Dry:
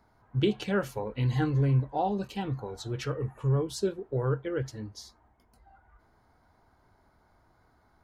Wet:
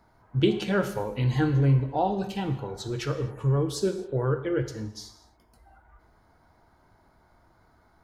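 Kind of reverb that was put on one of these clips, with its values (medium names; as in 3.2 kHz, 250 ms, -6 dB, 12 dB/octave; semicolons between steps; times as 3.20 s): gated-style reverb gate 290 ms falling, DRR 7.5 dB; trim +3 dB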